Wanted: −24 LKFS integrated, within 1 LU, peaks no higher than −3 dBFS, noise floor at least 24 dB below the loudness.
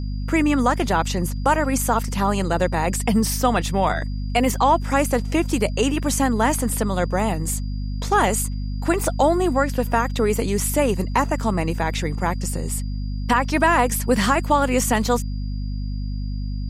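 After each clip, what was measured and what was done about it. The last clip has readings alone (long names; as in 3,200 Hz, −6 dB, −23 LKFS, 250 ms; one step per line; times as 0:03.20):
mains hum 50 Hz; hum harmonics up to 250 Hz; level of the hum −24 dBFS; interfering tone 4,800 Hz; level of the tone −48 dBFS; integrated loudness −21.5 LKFS; sample peak −5.0 dBFS; target loudness −24.0 LKFS
→ mains-hum notches 50/100/150/200/250 Hz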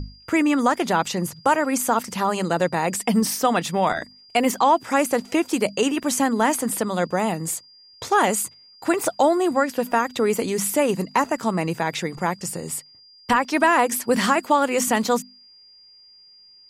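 mains hum none found; interfering tone 4,800 Hz; level of the tone −48 dBFS
→ notch filter 4,800 Hz, Q 30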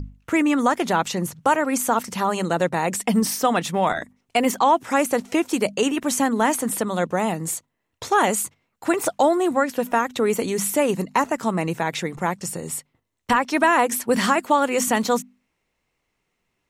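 interfering tone none found; integrated loudness −22.0 LKFS; sample peak −5.5 dBFS; target loudness −24.0 LKFS
→ level −2 dB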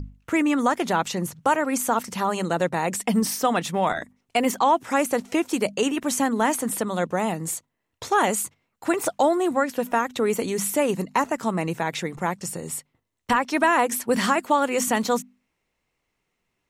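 integrated loudness −24.0 LKFS; sample peak −7.5 dBFS; background noise floor −78 dBFS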